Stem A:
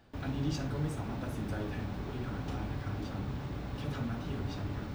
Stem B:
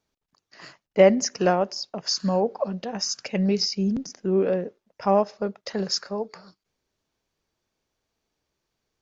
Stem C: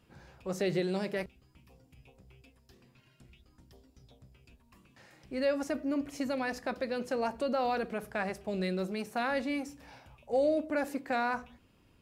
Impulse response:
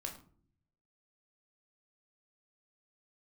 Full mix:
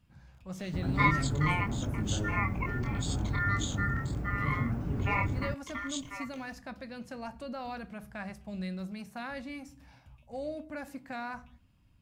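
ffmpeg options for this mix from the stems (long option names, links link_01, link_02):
-filter_complex "[0:a]equalizer=frequency=3800:width_type=o:width=0.89:gain=-13.5,adelay=600,volume=-3dB[link_01];[1:a]flanger=delay=19.5:depth=7.3:speed=1.6,acrusher=bits=9:mix=0:aa=0.000001,aeval=exprs='val(0)*sin(2*PI*1600*n/s)':channel_layout=same,volume=-8dB,asplit=2[link_02][link_03];[link_03]volume=-11.5dB[link_04];[2:a]equalizer=frequency=420:width_type=o:width=0.84:gain=-14.5,volume=-8dB,asplit=2[link_05][link_06];[link_06]volume=-11dB[link_07];[3:a]atrim=start_sample=2205[link_08];[link_04][link_07]amix=inputs=2:normalize=0[link_09];[link_09][link_08]afir=irnorm=-1:irlink=0[link_10];[link_01][link_02][link_05][link_10]amix=inputs=4:normalize=0,lowshelf=frequency=330:gain=9.5"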